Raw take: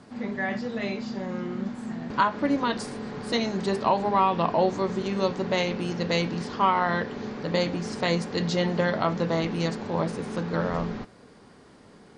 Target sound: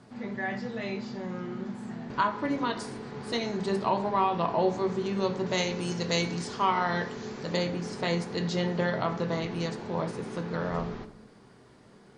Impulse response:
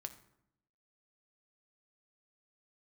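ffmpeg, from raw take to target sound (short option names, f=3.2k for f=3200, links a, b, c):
-filter_complex "[0:a]asettb=1/sr,asplit=3[a][b][c];[a]atrim=end=5.464[d];[b]atrim=start=5.46:end=7.57,asetpts=PTS-STARTPTS,afade=t=in:d=0.004:c=qsin,afade=t=out:st=2.106:d=0.004:c=qsin,equalizer=f=7.9k:w=0.84:g=12.5[e];[c]atrim=start=7.566[f];[d][e]acrossfade=d=0.004:c1=hsin:c2=qsin[g];[g][f]acrossfade=d=0.004:c1=qsin:c2=hsin[h];[1:a]atrim=start_sample=2205[i];[h][i]afir=irnorm=-1:irlink=0"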